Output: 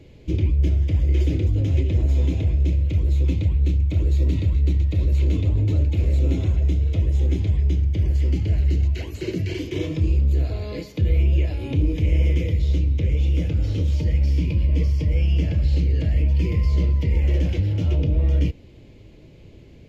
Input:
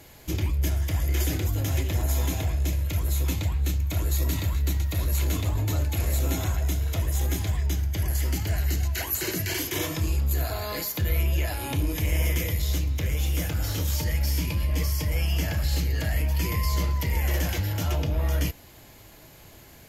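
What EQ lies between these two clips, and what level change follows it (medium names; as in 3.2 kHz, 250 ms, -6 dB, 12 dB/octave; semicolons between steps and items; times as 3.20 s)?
tape spacing loss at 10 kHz 24 dB; high-order bell 1.1 kHz -14.5 dB; treble shelf 3.9 kHz -8.5 dB; +6.5 dB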